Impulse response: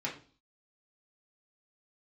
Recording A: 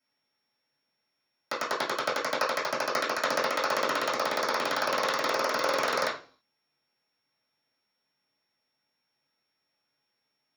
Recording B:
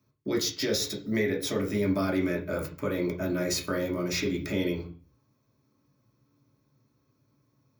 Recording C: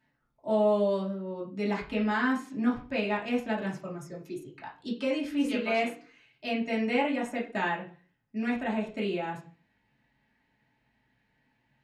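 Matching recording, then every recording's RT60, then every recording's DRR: C; 0.40 s, 0.40 s, 0.40 s; -13.0 dB, -1.5 dB, -5.5 dB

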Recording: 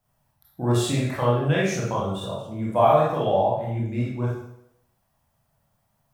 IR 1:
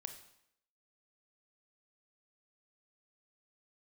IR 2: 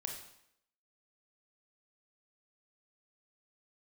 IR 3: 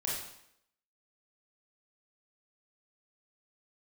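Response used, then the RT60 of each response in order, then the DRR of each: 3; 0.75 s, 0.75 s, 0.75 s; 6.5 dB, 1.5 dB, -5.5 dB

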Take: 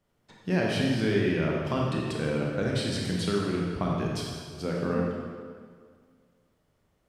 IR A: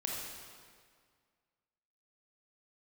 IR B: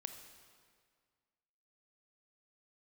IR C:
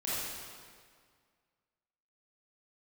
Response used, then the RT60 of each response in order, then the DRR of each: A; 1.9 s, 1.9 s, 1.9 s; -2.5 dB, 6.5 dB, -10.0 dB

